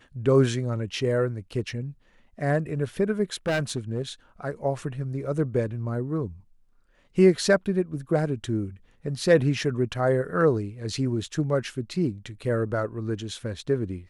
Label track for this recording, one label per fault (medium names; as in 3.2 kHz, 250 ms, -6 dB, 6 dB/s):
3.470000	4.020000	clipped -21 dBFS